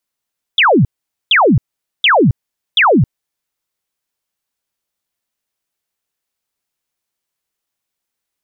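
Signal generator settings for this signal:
repeated falling chirps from 3,700 Hz, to 100 Hz, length 0.27 s sine, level −6.5 dB, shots 4, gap 0.46 s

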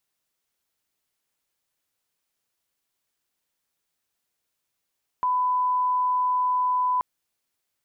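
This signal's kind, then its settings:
line-up tone −20 dBFS 1.78 s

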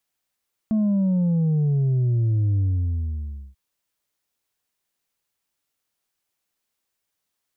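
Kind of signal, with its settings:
bass drop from 220 Hz, over 2.84 s, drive 3 dB, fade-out 0.96 s, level −18 dB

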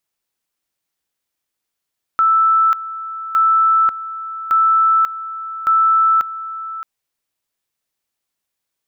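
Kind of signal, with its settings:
tone at two levels in turn 1,320 Hz −10 dBFS, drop 14.5 dB, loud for 0.54 s, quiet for 0.62 s, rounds 4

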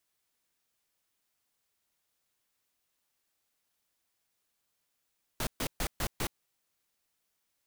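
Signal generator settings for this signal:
noise bursts pink, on 0.07 s, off 0.13 s, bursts 5, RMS −32 dBFS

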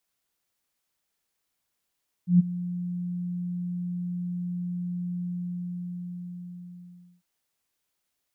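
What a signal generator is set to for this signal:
note with an ADSR envelope sine 177 Hz, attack 123 ms, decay 20 ms, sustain −16.5 dB, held 2.95 s, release 2,000 ms −12 dBFS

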